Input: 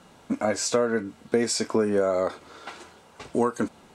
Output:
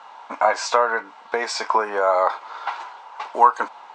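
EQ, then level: resonant high-pass 910 Hz, resonance Q 4.3; LPF 7300 Hz 12 dB/oct; air absorption 110 m; +7.0 dB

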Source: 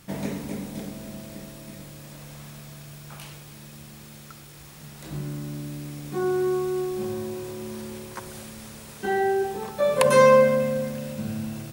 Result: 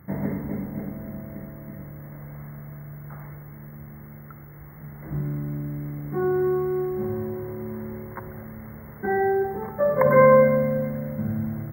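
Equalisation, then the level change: HPF 58 Hz; brick-wall FIR band-stop 2200–13000 Hz; low shelf 130 Hz +11 dB; 0.0 dB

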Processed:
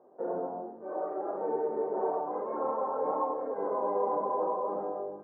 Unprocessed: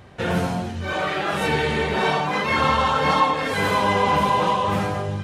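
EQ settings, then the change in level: HPF 350 Hz 24 dB/oct; Bessel low-pass 570 Hz, order 6; -3.0 dB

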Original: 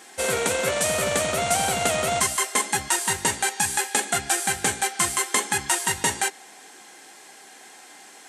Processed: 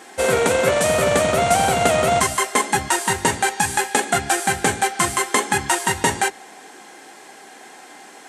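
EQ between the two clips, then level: high shelf 2100 Hz -9 dB; notches 50/100/150/200 Hz; +8.5 dB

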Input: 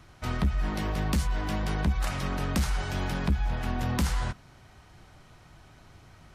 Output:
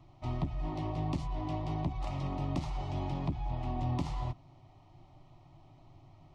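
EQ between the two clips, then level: tape spacing loss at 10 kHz 27 dB; fixed phaser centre 310 Hz, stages 8; 0.0 dB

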